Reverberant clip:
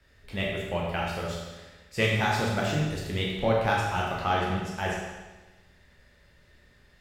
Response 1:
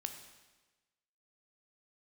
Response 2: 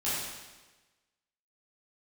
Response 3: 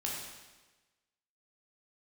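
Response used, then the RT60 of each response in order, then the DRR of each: 3; 1.2, 1.2, 1.2 seconds; 6.0, −11.5, −3.5 decibels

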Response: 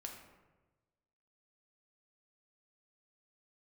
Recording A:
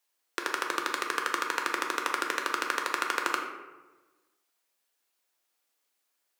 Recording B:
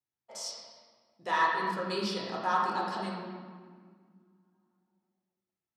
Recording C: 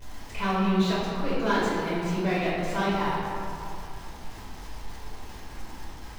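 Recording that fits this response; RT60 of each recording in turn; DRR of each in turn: A; 1.2, 1.9, 2.5 seconds; 1.0, −4.5, −9.5 decibels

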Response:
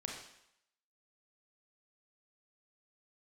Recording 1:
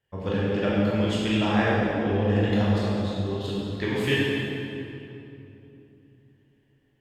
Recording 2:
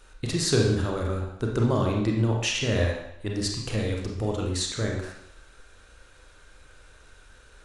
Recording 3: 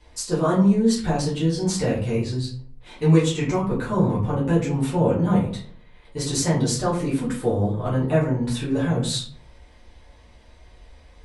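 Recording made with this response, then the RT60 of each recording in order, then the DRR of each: 2; 2.9, 0.75, 0.50 seconds; −7.5, −0.5, −9.0 decibels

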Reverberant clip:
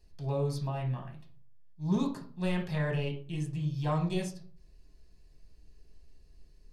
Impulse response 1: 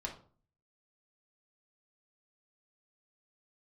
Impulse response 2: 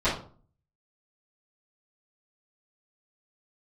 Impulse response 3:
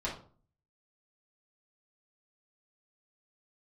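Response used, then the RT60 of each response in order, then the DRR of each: 1; 0.45, 0.45, 0.45 seconds; −0.5, −15.5, −6.5 decibels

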